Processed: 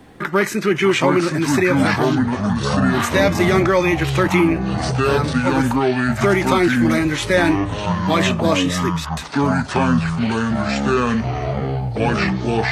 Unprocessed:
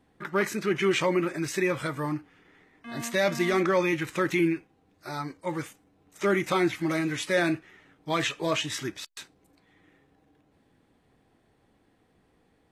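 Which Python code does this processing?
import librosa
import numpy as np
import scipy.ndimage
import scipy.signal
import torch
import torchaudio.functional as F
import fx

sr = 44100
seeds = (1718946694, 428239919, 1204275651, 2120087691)

y = fx.echo_pitch(x, sr, ms=541, semitones=-6, count=3, db_per_echo=-3.0)
y = fx.band_squash(y, sr, depth_pct=40)
y = F.gain(torch.from_numpy(y), 8.5).numpy()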